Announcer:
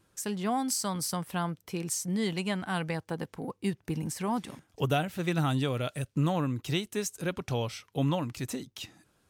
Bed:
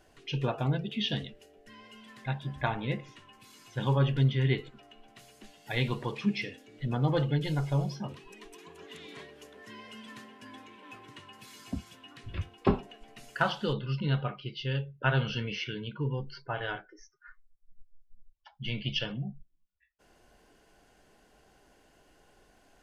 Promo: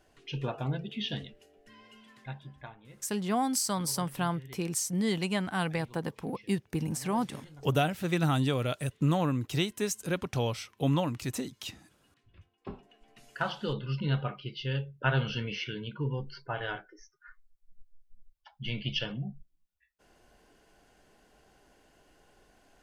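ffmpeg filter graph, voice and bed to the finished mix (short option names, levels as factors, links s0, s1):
-filter_complex "[0:a]adelay=2850,volume=1.12[s0];[1:a]volume=7.5,afade=t=out:st=1.93:d=0.84:silence=0.125893,afade=t=in:st=12.6:d=1.37:silence=0.0891251[s1];[s0][s1]amix=inputs=2:normalize=0"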